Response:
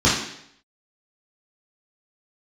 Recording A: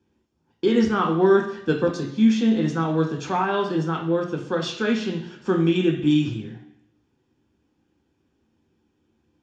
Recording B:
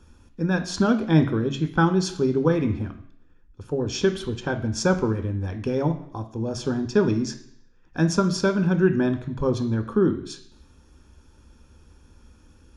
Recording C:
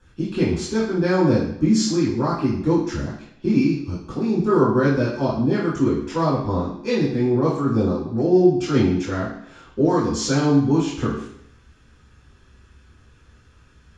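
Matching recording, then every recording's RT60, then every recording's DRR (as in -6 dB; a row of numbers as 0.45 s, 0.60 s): C; 0.70 s, 0.70 s, 0.70 s; 1.5 dB, 7.5 dB, -8.5 dB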